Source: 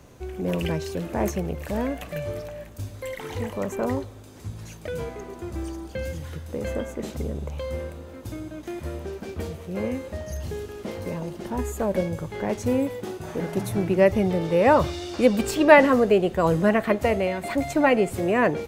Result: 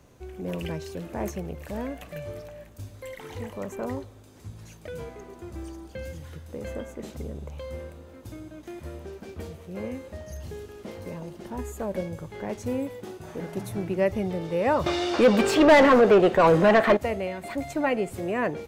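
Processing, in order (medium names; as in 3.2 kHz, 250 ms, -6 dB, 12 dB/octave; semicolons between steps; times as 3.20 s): 14.86–16.97 s: overdrive pedal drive 26 dB, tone 1.6 kHz, clips at -1 dBFS; trim -6 dB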